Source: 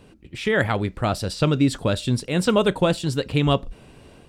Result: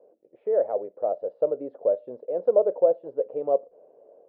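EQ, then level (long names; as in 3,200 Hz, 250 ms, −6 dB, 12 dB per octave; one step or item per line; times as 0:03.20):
flat-topped band-pass 550 Hz, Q 2.7
high-frequency loss of the air 230 metres
+4.5 dB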